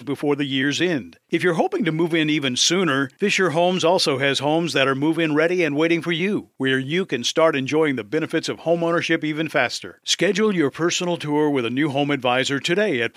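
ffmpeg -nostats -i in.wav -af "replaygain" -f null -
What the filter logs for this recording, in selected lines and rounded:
track_gain = +0.9 dB
track_peak = 0.520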